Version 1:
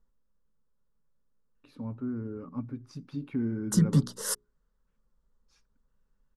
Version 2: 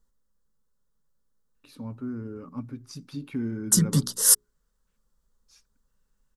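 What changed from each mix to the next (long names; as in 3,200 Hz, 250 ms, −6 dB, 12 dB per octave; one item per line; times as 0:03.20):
master: remove low-pass filter 1,500 Hz 6 dB per octave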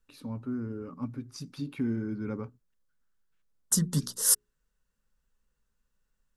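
first voice: entry −1.55 s
second voice −5.5 dB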